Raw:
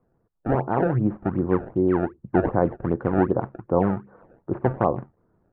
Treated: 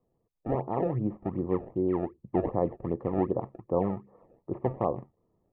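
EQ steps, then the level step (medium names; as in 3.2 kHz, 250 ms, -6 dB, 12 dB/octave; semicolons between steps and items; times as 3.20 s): Butterworth band-stop 1.5 kHz, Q 2.9; peaking EQ 480 Hz +3 dB; -8.0 dB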